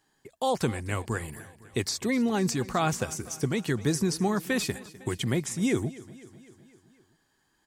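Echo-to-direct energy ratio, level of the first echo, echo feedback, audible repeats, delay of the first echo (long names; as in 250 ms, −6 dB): −17.0 dB, −19.0 dB, 60%, 4, 253 ms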